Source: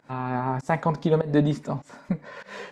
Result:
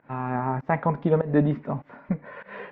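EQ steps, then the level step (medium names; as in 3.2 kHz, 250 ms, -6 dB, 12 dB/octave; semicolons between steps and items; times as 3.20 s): low-pass 2.5 kHz 24 dB/octave; 0.0 dB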